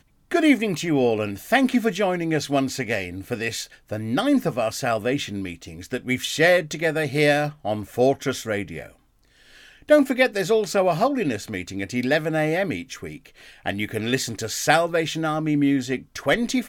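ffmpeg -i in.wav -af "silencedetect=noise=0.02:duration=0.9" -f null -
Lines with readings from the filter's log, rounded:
silence_start: 8.89
silence_end: 9.89 | silence_duration: 1.00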